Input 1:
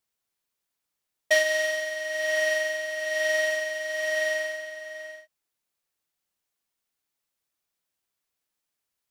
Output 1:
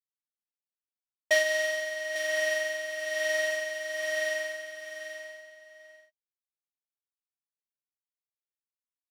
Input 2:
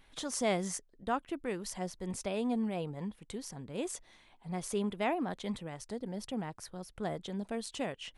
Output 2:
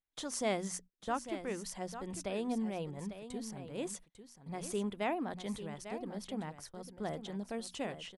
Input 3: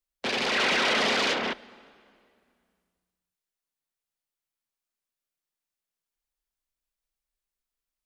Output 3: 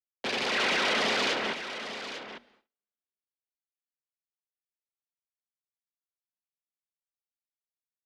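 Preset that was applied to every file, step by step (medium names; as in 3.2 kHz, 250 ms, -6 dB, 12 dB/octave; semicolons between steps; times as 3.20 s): hum notches 60/120/180/240 Hz; gate -49 dBFS, range -32 dB; delay 848 ms -11 dB; trim -2.5 dB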